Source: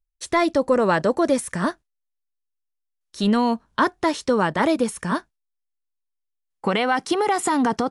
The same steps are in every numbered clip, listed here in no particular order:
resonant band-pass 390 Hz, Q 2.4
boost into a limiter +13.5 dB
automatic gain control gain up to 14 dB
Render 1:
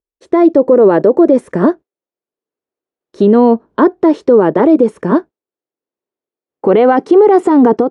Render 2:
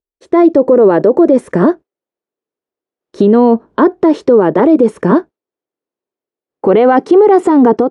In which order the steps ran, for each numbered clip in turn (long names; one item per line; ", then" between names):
automatic gain control, then resonant band-pass, then boost into a limiter
resonant band-pass, then automatic gain control, then boost into a limiter